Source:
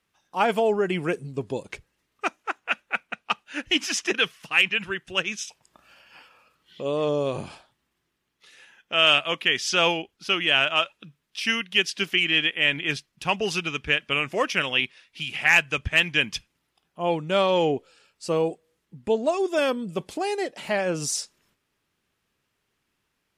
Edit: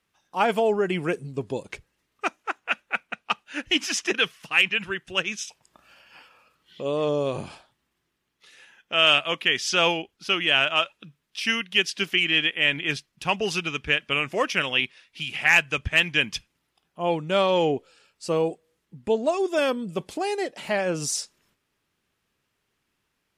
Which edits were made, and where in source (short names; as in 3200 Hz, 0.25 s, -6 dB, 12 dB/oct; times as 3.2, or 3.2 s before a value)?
none